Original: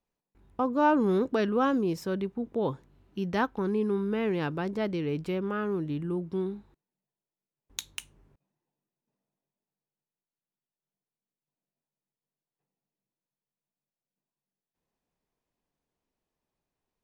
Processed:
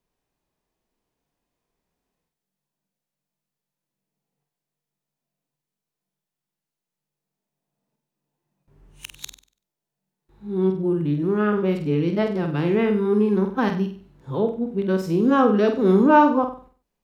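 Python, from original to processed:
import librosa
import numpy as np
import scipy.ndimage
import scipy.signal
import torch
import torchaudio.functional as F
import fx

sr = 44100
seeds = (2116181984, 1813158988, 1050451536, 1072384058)

y = np.flip(x).copy()
y = fx.hpss(y, sr, part='harmonic', gain_db=8)
y = fx.room_flutter(y, sr, wall_m=8.2, rt60_s=0.42)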